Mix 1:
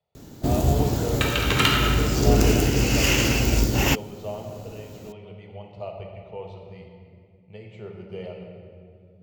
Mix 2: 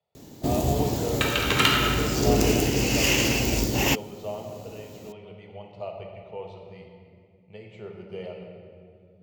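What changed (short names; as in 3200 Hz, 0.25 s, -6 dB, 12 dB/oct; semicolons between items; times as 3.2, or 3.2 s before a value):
first sound: add bell 1400 Hz -7.5 dB 0.42 oct; master: add low shelf 110 Hz -9.5 dB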